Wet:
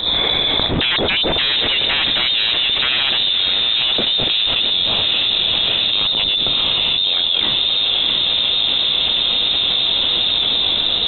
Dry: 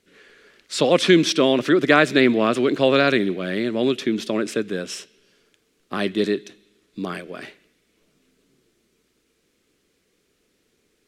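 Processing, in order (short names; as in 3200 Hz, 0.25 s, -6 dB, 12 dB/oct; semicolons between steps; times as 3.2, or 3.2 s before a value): band shelf 1600 Hz -15 dB; sine folder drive 15 dB, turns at -4 dBFS; on a send: diffused feedback echo 0.662 s, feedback 52%, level -9.5 dB; on the sum: inverted band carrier 3900 Hz; fast leveller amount 100%; gain -11.5 dB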